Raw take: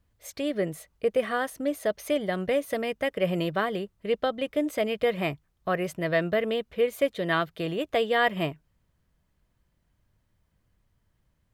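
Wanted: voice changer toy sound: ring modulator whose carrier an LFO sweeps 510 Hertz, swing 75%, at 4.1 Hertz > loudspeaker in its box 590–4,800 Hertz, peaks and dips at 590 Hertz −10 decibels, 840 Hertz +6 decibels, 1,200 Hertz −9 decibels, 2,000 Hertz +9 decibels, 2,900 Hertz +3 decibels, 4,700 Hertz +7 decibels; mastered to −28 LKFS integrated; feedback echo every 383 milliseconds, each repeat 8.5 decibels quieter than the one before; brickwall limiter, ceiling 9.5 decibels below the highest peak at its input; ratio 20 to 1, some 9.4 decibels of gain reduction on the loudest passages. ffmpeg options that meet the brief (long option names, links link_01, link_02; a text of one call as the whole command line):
ffmpeg -i in.wav -af "acompressor=threshold=-28dB:ratio=20,alimiter=level_in=3dB:limit=-24dB:level=0:latency=1,volume=-3dB,aecho=1:1:383|766|1149|1532:0.376|0.143|0.0543|0.0206,aeval=exprs='val(0)*sin(2*PI*510*n/s+510*0.75/4.1*sin(2*PI*4.1*n/s))':channel_layout=same,highpass=590,equalizer=frequency=590:width_type=q:width=4:gain=-10,equalizer=frequency=840:width_type=q:width=4:gain=6,equalizer=frequency=1200:width_type=q:width=4:gain=-9,equalizer=frequency=2000:width_type=q:width=4:gain=9,equalizer=frequency=2900:width_type=q:width=4:gain=3,equalizer=frequency=4700:width_type=q:width=4:gain=7,lowpass=frequency=4800:width=0.5412,lowpass=frequency=4800:width=1.3066,volume=13.5dB" out.wav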